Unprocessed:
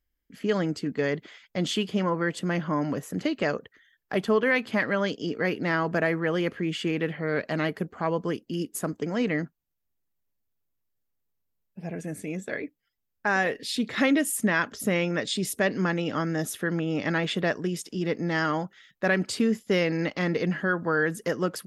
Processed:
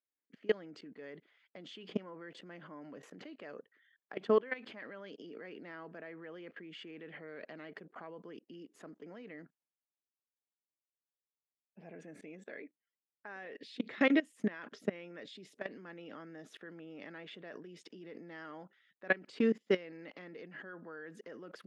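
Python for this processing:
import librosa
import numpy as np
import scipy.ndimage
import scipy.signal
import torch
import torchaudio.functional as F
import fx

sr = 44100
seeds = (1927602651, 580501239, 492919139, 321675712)

y = fx.dynamic_eq(x, sr, hz=1000.0, q=0.88, threshold_db=-39.0, ratio=4.0, max_db=-4)
y = fx.level_steps(y, sr, step_db=23)
y = fx.bandpass_edges(y, sr, low_hz=280.0, high_hz=3000.0)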